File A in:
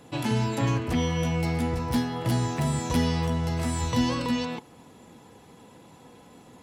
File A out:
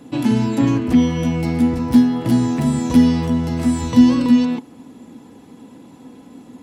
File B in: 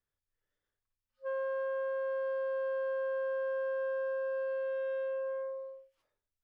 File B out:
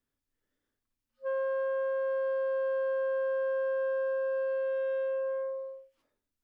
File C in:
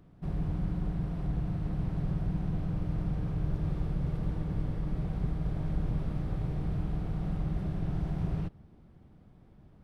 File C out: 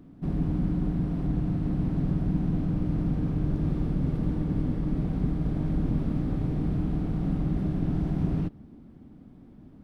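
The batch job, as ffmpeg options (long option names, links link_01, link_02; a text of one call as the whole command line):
ffmpeg -i in.wav -af "equalizer=frequency=260:width_type=o:width=0.72:gain=14.5,volume=2dB" out.wav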